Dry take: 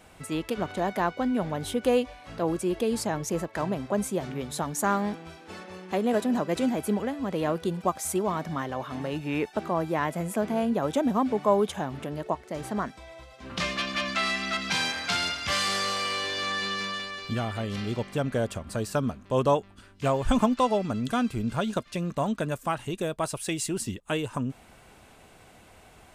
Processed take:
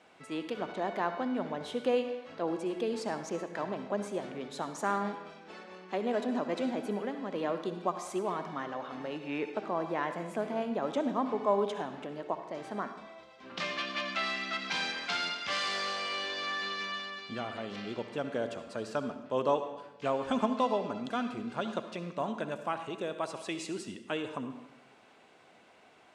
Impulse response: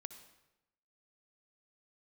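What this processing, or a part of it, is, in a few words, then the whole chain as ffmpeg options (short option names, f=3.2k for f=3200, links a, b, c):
supermarket ceiling speaker: -filter_complex "[0:a]highpass=250,lowpass=5k[a];[1:a]atrim=start_sample=2205[b];[a][b]afir=irnorm=-1:irlink=0"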